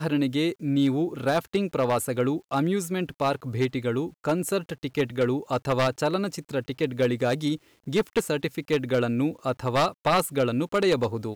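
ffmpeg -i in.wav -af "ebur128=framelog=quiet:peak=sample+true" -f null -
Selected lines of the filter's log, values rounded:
Integrated loudness:
  I:         -26.1 LUFS
  Threshold: -36.1 LUFS
Loudness range:
  LRA:         2.0 LU
  Threshold: -46.6 LUFS
  LRA low:   -27.3 LUFS
  LRA high:  -25.3 LUFS
Sample peak:
  Peak:      -10.9 dBFS
True peak:
  Peak:      -10.9 dBFS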